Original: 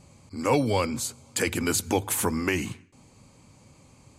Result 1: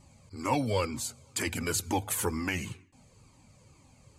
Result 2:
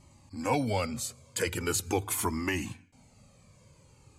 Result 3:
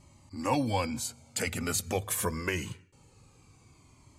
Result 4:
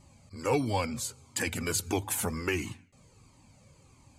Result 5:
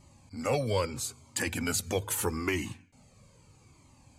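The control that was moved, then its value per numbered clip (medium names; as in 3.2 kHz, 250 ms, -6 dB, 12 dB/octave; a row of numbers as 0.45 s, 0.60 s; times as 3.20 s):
Shepard-style flanger, rate: 2.1 Hz, 0.43 Hz, 0.24 Hz, 1.5 Hz, 0.78 Hz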